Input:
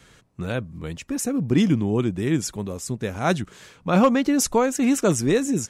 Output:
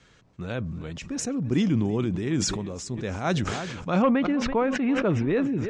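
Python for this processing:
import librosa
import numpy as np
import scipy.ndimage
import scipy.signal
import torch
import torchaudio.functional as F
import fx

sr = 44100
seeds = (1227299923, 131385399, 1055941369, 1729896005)

y = fx.lowpass(x, sr, hz=fx.steps((0.0, 6800.0), (4.02, 2900.0)), slope=24)
y = fx.echo_feedback(y, sr, ms=332, feedback_pct=32, wet_db=-19)
y = fx.sustainer(y, sr, db_per_s=30.0)
y = F.gain(torch.from_numpy(y), -5.0).numpy()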